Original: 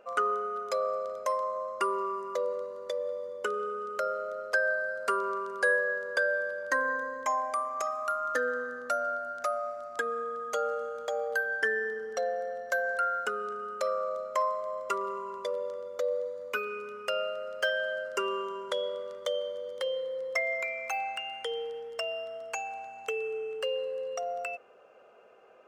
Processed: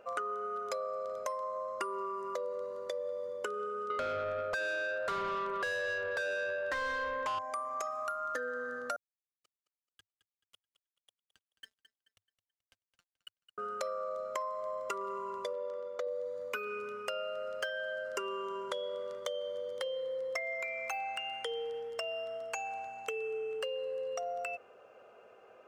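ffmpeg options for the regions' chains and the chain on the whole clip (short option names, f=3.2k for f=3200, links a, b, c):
-filter_complex "[0:a]asettb=1/sr,asplit=3[a][b][c];[a]atrim=end=3.904[d];[b]atrim=start=3.9:end=7.39,asetpts=PTS-STARTPTS,afade=t=in:d=0.004:c=qsin,afade=t=out:st=3.486:d=0.004:c=qsin,highshelf=f=2k:g=-10.5,asplit=2[e][f];[f]highpass=f=720:p=1,volume=23dB,asoftclip=type=tanh:threshold=-17.5dB[g];[e][g]amix=inputs=2:normalize=0,lowpass=f=3.7k:p=1,volume=-6dB[h];[c]atrim=start=7.386[i];[d][h]acrossfade=d=0.004:c1=hsin:c2=qsin[j];[j][i]acrossfade=d=0.004:c1=qsin:c2=hsin,asettb=1/sr,asplit=3[k][l][m];[k]atrim=end=8.964[n];[l]atrim=start=8.96:end=13.58,asetpts=PTS-STARTPTS,afade=t=in:d=0.004:c=qsin,afade=t=out:st=4.616:d=0.004:c=qsin,bandpass=f=3k:t=q:w=15,aeval=exprs='sgn(val(0))*max(abs(val(0))-0.00282,0)':c=same,aecho=1:1:216|432|648|864:0.224|0.0806|0.029|0.0104,atrim=end_sample=203742[o];[m]atrim=start=13.576[p];[n][o]acrossfade=d=0.004:c1=hsin:c2=qsin[q];[q][p]acrossfade=d=0.004:c1=qsin:c2=hsin,asettb=1/sr,asplit=3[r][s][t];[r]atrim=end=15.534[u];[s]atrim=start=15.53:end=16.07,asetpts=PTS-STARTPTS,afade=t=in:d=0.004:c=qsin,afade=t=out:st=0.536:d=0.004:c=qsin,highpass=f=340:p=1,aemphasis=mode=reproduction:type=50fm[v];[t]atrim=start=16.066[w];[u][v]acrossfade=d=0.004:c1=hsin:c2=qsin[x];[x][w]acrossfade=d=0.004:c1=qsin:c2=hsin,equalizer=f=100:t=o:w=0.42:g=9,acompressor=threshold=-34dB:ratio=6"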